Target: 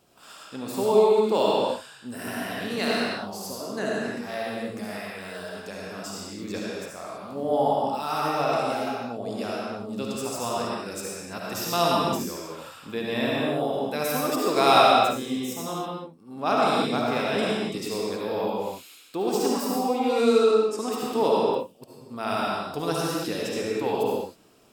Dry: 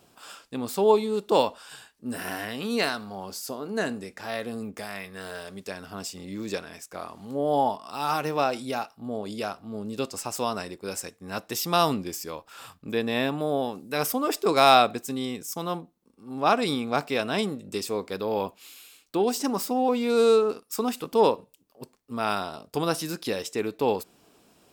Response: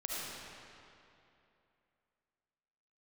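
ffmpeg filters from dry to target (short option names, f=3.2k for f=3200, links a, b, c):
-filter_complex "[0:a]asettb=1/sr,asplit=3[a][b][c];[a]atrim=end=20.414[d];[b]atrim=start=20.41:end=20.81,asetpts=PTS-STARTPTS,afade=t=in:d=0.004:c=qsin,afade=t=out:st=0.396:d=0.004:c=qsin,lowpass=f=9.9k:w=0.5412,lowpass=f=9.9k:w=1.3066[e];[c]atrim=start=20.806[f];[d][e]acrossfade=d=0.004:c1=hsin:c2=qsin[g];[g][f]acrossfade=d=0.004:c1=qsin:c2=hsin[h];[1:a]atrim=start_sample=2205,afade=t=out:st=0.38:d=0.01,atrim=end_sample=17199[i];[h][i]afir=irnorm=-1:irlink=0,volume=-1dB"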